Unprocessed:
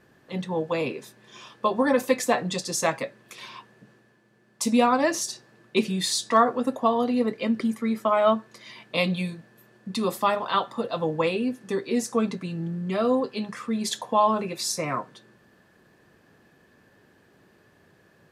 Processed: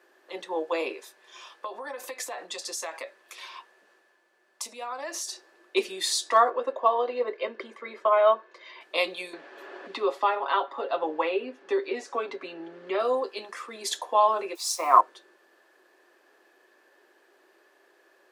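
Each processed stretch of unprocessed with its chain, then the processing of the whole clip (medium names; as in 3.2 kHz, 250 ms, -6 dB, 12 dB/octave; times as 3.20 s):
0.94–5.32 s: compression 12:1, threshold -28 dBFS + peaking EQ 340 Hz -6.5 dB 1 oct
6.50–8.81 s: low-pass 3.1 kHz + comb 1.9 ms, depth 39%
9.33–13.00 s: low-pass 3 kHz + comb 7.2 ms, depth 56% + three bands compressed up and down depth 70%
14.55–15.01 s: word length cut 8-bit, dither triangular + high-order bell 930 Hz +12 dB 1 oct + three bands expanded up and down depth 70%
whole clip: Chebyshev high-pass 350 Hz, order 4; band-stop 450 Hz, Q 12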